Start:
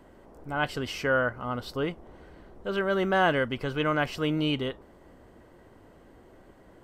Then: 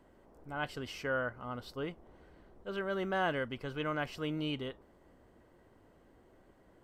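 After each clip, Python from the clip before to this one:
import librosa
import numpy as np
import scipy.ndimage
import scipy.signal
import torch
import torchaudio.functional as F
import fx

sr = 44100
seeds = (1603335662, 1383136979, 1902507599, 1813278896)

y = fx.attack_slew(x, sr, db_per_s=490.0)
y = y * 10.0 ** (-9.0 / 20.0)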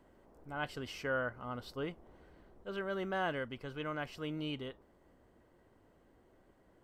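y = fx.rider(x, sr, range_db=10, speed_s=2.0)
y = y * 10.0 ** (-3.0 / 20.0)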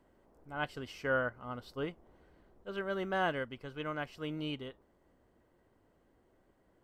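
y = fx.upward_expand(x, sr, threshold_db=-47.0, expansion=1.5)
y = y * 10.0 ** (4.0 / 20.0)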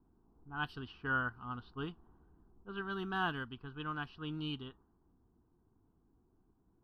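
y = fx.fixed_phaser(x, sr, hz=2100.0, stages=6)
y = fx.env_lowpass(y, sr, base_hz=650.0, full_db=-36.0)
y = y * 10.0 ** (1.5 / 20.0)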